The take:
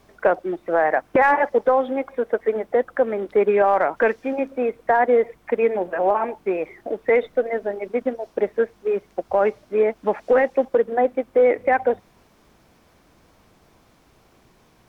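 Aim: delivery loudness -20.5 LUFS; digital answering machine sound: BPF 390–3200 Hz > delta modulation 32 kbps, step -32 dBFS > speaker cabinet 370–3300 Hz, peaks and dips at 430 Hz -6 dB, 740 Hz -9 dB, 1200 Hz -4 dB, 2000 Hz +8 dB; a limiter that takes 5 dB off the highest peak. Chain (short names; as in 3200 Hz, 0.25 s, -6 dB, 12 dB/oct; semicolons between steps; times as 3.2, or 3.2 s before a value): limiter -14 dBFS; BPF 390–3200 Hz; delta modulation 32 kbps, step -32 dBFS; speaker cabinet 370–3300 Hz, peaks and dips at 430 Hz -6 dB, 740 Hz -9 dB, 1200 Hz -4 dB, 2000 Hz +8 dB; gain +9.5 dB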